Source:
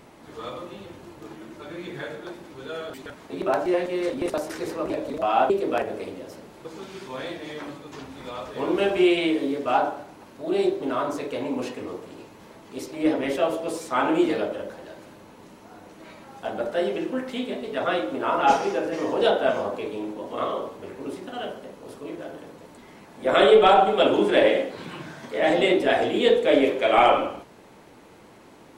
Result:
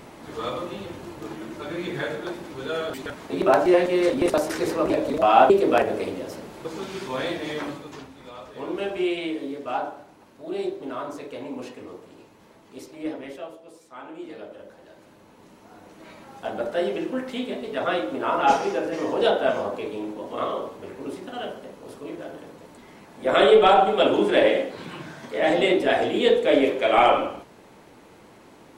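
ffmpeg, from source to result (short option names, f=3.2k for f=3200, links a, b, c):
-af "volume=23.5dB,afade=t=out:st=7.6:d=0.54:silence=0.266073,afade=t=out:st=12.77:d=0.84:silence=0.251189,afade=t=in:st=14.18:d=0.73:silence=0.298538,afade=t=in:st=14.91:d=1.3:silence=0.421697"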